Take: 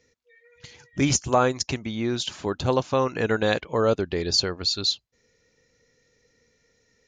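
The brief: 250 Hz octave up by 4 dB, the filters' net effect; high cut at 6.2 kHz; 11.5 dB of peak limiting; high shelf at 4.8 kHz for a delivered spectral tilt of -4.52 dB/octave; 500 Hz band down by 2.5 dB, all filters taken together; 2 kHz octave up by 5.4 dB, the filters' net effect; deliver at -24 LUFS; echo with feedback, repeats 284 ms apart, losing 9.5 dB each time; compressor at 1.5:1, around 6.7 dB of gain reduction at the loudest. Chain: low-pass 6.2 kHz; peaking EQ 250 Hz +6 dB; peaking EQ 500 Hz -5 dB; peaking EQ 2 kHz +8.5 dB; treble shelf 4.8 kHz -7 dB; compression 1.5:1, threshold -33 dBFS; peak limiter -23.5 dBFS; feedback delay 284 ms, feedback 33%, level -9.5 dB; trim +10 dB

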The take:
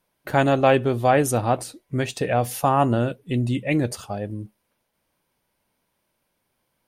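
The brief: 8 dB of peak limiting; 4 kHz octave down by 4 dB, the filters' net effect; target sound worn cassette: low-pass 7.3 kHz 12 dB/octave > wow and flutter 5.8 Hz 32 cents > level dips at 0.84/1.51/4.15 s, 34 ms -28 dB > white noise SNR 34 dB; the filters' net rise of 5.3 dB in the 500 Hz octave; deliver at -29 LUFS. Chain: peaking EQ 500 Hz +6.5 dB; peaking EQ 4 kHz -5.5 dB; peak limiter -10 dBFS; low-pass 7.3 kHz 12 dB/octave; wow and flutter 5.8 Hz 32 cents; level dips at 0.84/1.51/4.15 s, 34 ms -28 dB; white noise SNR 34 dB; trim -6.5 dB

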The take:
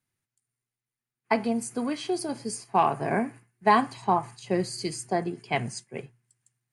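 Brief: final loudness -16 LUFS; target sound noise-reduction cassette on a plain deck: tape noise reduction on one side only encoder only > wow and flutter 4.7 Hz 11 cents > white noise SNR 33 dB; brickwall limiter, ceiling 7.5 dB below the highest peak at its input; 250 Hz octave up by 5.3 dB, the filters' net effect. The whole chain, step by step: peaking EQ 250 Hz +6.5 dB; peak limiter -15 dBFS; tape noise reduction on one side only encoder only; wow and flutter 4.7 Hz 11 cents; white noise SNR 33 dB; trim +12 dB

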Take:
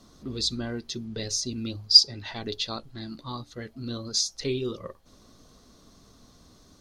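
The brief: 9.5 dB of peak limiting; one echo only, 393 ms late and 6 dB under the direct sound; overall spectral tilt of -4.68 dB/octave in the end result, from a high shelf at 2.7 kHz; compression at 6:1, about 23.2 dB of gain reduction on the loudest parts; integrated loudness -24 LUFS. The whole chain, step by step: treble shelf 2.7 kHz -4.5 dB; compression 6:1, threshold -38 dBFS; peak limiter -36 dBFS; delay 393 ms -6 dB; trim +20.5 dB

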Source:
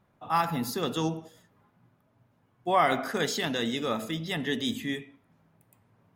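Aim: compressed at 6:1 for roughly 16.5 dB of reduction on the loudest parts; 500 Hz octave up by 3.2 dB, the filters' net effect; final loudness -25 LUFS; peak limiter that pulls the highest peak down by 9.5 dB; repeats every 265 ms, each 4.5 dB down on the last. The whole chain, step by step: peaking EQ 500 Hz +4 dB; compression 6:1, threshold -35 dBFS; peak limiter -33.5 dBFS; feedback delay 265 ms, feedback 60%, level -4.5 dB; trim +17 dB

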